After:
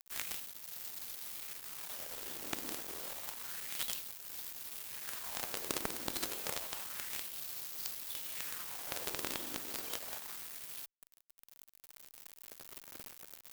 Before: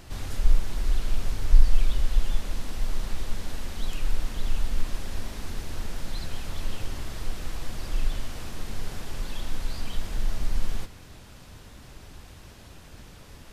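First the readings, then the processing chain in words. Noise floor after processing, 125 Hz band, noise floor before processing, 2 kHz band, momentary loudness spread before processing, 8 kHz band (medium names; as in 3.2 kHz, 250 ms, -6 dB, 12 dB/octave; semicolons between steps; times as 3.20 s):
-67 dBFS, -27.0 dB, -47 dBFS, -4.0 dB, 19 LU, no reading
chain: in parallel at +2 dB: compression 6:1, threshold -31 dBFS, peak gain reduction 22 dB; on the sum: LFO high-pass sine 0.29 Hz 300–4700 Hz; bit crusher 6-bit; Chebyshev shaper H 7 -9 dB, 8 -43 dB, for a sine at -20 dBFS; trim +3.5 dB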